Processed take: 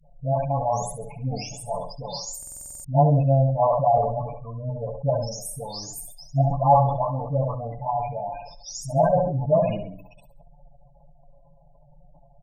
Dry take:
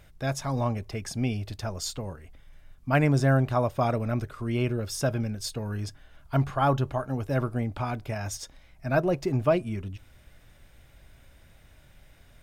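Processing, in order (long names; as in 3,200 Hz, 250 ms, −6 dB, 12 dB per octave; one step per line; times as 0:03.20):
every frequency bin delayed by itself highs late, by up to 510 ms
octave-band graphic EQ 125/250/500/1,000/2,000/4,000/8,000 Hz +9/−7/+5/+11/−8/−6/−9 dB
in parallel at −4.5 dB: gain into a clipping stage and back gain 16 dB
on the sum: phaser with its sweep stopped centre 370 Hz, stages 6
comb filter 7 ms, depth 62%
on a send at −20.5 dB: convolution reverb RT60 1.2 s, pre-delay 68 ms
on the sum: gate on every frequency bin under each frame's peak −20 dB strong
parametric band 12,000 Hz +14 dB 3 octaves
mains-hum notches 60/120/180/240/300/360/420/480/540 Hz
flutter between parallel walls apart 11.7 metres, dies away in 0.42 s
buffer that repeats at 0:02.38, samples 2,048, times 9
level that may fall only so fast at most 59 dB per second
level −4 dB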